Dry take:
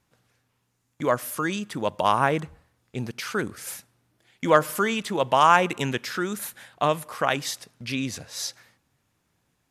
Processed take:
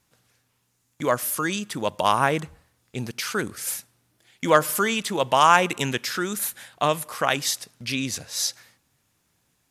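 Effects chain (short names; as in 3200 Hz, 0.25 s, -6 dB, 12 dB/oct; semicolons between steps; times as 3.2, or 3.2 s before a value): high shelf 3300 Hz +8 dB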